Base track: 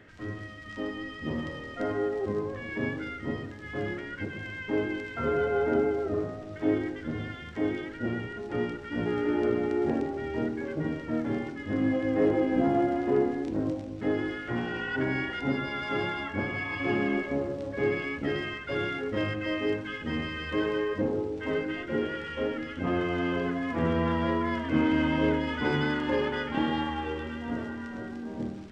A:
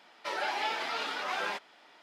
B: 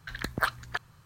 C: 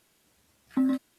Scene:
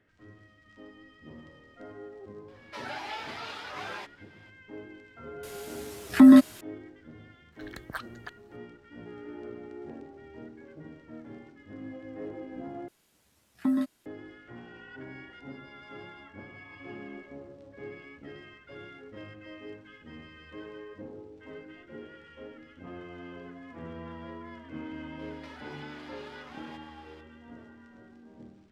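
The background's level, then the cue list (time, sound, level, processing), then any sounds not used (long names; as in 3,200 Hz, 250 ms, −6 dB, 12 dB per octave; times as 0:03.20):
base track −15.5 dB
0:02.48: mix in A −5.5 dB
0:05.43: mix in C −6.5 dB + boost into a limiter +26.5 dB
0:07.52: mix in B −10.5 dB
0:12.88: overwrite with C −1.5 dB
0:25.19: mix in A −1 dB + downward compressor 8 to 1, threshold −47 dBFS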